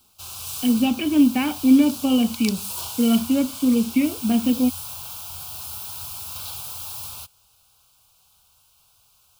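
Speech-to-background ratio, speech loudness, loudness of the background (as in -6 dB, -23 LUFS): 11.0 dB, -20.5 LUFS, -31.5 LUFS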